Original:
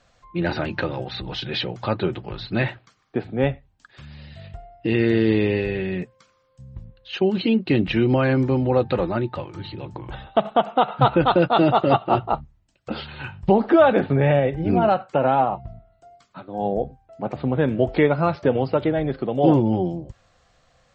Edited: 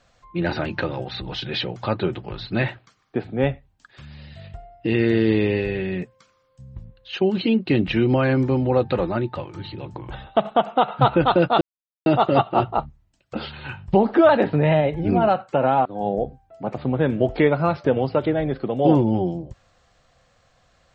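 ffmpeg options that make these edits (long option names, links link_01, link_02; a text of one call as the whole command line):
ffmpeg -i in.wav -filter_complex "[0:a]asplit=5[link_01][link_02][link_03][link_04][link_05];[link_01]atrim=end=11.61,asetpts=PTS-STARTPTS,afade=type=out:start_time=11.606:duration=0.004:curve=hsin,apad=pad_dur=0.45[link_06];[link_02]atrim=start=11.61:end=13.844,asetpts=PTS-STARTPTS,afade=type=in:duration=0.004:curve=hsin[link_07];[link_03]atrim=start=13.84:end=14.6,asetpts=PTS-STARTPTS,asetrate=47628,aresample=44100,atrim=end_sample=31033,asetpts=PTS-STARTPTS[link_08];[link_04]atrim=start=14.596:end=15.462[link_09];[link_05]atrim=start=16.438[link_10];[link_06][link_07]concat=n=2:v=0:a=1[link_11];[link_11][link_08]acrossfade=duration=0.004:curve1=hsin:curve2=hsin[link_12];[link_12][link_09]acrossfade=duration=0.004:curve1=hsin:curve2=hsin[link_13];[link_13][link_10]acrossfade=duration=0.004:curve1=hsin:curve2=hsin" out.wav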